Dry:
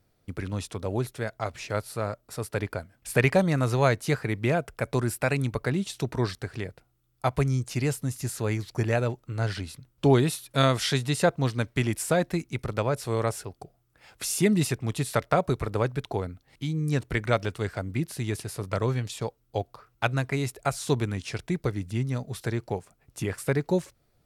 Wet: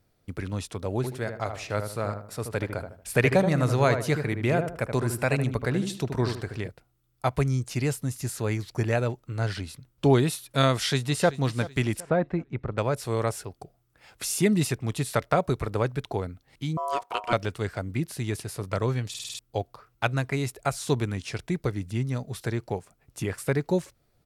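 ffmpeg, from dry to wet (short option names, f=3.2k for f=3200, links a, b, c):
-filter_complex "[0:a]asettb=1/sr,asplit=3[a][b][c];[a]atrim=end=0.964[d];[b]atrim=start=0.96:end=6.68,asetpts=PTS-STARTPTS,afade=t=in:d=0.004:c=qsin,afade=t=out:st=5.716:d=0.004:c=qsin,asplit=2[e][f];[f]adelay=77,lowpass=f=1.4k:p=1,volume=-6dB,asplit=2[g][h];[h]adelay=77,lowpass=f=1.4k:p=1,volume=0.37,asplit=2[i][j];[j]adelay=77,lowpass=f=1.4k:p=1,volume=0.37,asplit=2[k][l];[l]adelay=77,lowpass=f=1.4k:p=1,volume=0.37[m];[e][g][i][k][m]amix=inputs=5:normalize=0,atrim=end_sample=252252[n];[c]atrim=start=6.676[o];[d][n]acrossfade=d=0.004:c1=hsin:c2=qsin[p];[p][o]acrossfade=d=0.004:c1=qsin:c2=hsin,asplit=2[q][r];[r]afade=t=in:st=10.72:d=0.01,afade=t=out:st=11.36:d=0.01,aecho=0:1:380|760|1140|1520:0.158489|0.0633957|0.0253583|0.0101433[s];[q][s]amix=inputs=2:normalize=0,asettb=1/sr,asplit=3[t][u][v];[t]atrim=end=12.004[w];[u]atrim=start=12:end=12.78,asetpts=PTS-STARTPTS,afade=t=in:d=0.004:c=qsin,afade=t=out:st=0.776:d=0.004:c=qsin,lowpass=1.6k[x];[v]atrim=start=12.776[y];[w][x]acrossfade=d=0.004:c1=hsin:c2=qsin[z];[z][y]acrossfade=d=0.004:c1=qsin:c2=hsin,asettb=1/sr,asplit=3[aa][ab][ac];[aa]atrim=end=16.774[ad];[ab]atrim=start=16.77:end=17.33,asetpts=PTS-STARTPTS,afade=t=in:d=0.004:c=qsin,afade=t=out:st=0.556:d=0.004:c=qsin,aeval=exprs='val(0)*sin(2*PI*840*n/s)':c=same[ae];[ac]atrim=start=17.326[af];[ad][ae]acrossfade=d=0.004:c1=hsin:c2=qsin[ag];[ag][af]acrossfade=d=0.004:c1=qsin:c2=hsin,asplit=7[ah][ai][aj][ak][al][am][an];[ah]atrim=end=19.142[ao];[ai]atrim=start=19.088:end=19.142[ap];[aj]atrim=start=19.088:end=19.142[aq];[ak]atrim=start=19.088:end=19.142[ar];[al]atrim=start=19.088:end=19.142[as];[am]atrim=start=19.088:end=19.142[at];[an]atrim=start=19.388[au];[ao][ap]acrossfade=d=0.004:c1=hsin:c2=hsin[av];[av][aq]acrossfade=d=0.004:c1=hsin:c2=hsin[aw];[aw][ar]acrossfade=d=0.004:c1=hsin:c2=hsin[ax];[ax][as]acrossfade=d=0.004:c1=hsin:c2=hsin[ay];[ay][at]acrossfade=d=0.004:c1=hsin:c2=hsin[az];[az][au]acrossfade=d=0.004:c1=hsin:c2=hsin"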